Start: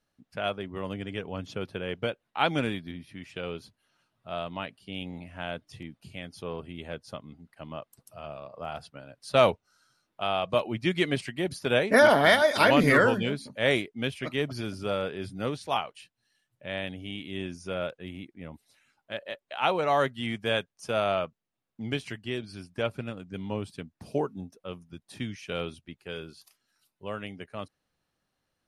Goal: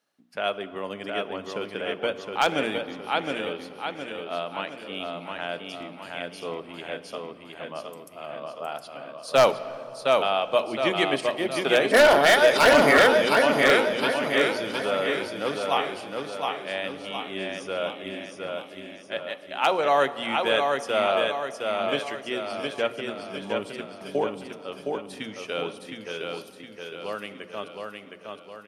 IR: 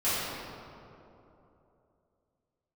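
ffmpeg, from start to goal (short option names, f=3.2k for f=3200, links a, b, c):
-filter_complex "[0:a]highpass=280,bandreject=f=60:t=h:w=6,bandreject=f=120:t=h:w=6,bandreject=f=180:t=h:w=6,bandreject=f=240:t=h:w=6,bandreject=f=300:t=h:w=6,bandreject=f=360:t=h:w=6,aecho=1:1:714|1428|2142|2856|3570|4284:0.631|0.309|0.151|0.0742|0.0364|0.0178,aeval=exprs='0.237*(abs(mod(val(0)/0.237+3,4)-2)-1)':c=same,asplit=2[a][b];[1:a]atrim=start_sample=2205,adelay=30[c];[b][c]afir=irnorm=-1:irlink=0,volume=-26.5dB[d];[a][d]amix=inputs=2:normalize=0,volume=3.5dB"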